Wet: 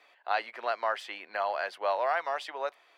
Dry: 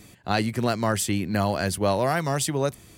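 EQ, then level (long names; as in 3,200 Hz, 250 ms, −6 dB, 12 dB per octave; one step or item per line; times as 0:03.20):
high-pass filter 650 Hz 24 dB per octave
high-frequency loss of the air 350 metres
0.0 dB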